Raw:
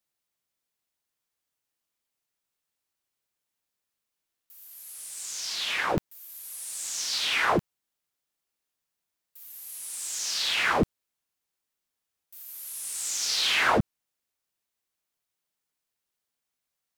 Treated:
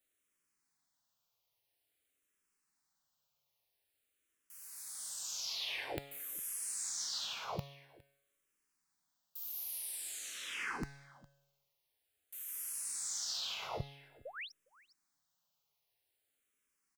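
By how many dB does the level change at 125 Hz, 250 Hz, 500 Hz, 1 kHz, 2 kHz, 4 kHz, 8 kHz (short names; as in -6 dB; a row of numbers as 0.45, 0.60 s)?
-12.5, -18.5, -16.5, -17.5, -16.5, -12.5, -7.5 dB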